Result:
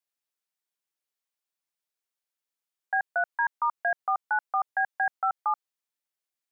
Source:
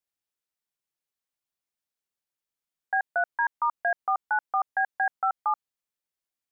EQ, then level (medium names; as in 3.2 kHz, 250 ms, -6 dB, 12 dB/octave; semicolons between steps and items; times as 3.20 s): high-pass 430 Hz 6 dB/octave; 0.0 dB